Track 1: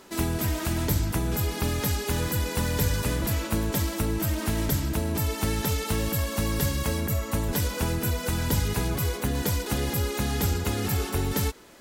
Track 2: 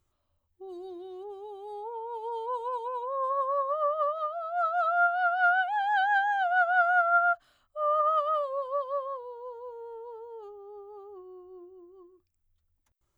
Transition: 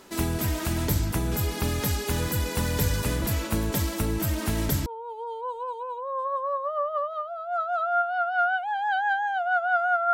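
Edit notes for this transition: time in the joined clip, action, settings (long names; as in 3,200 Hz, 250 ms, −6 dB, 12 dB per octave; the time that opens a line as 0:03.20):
track 1
0:04.86: continue with track 2 from 0:01.91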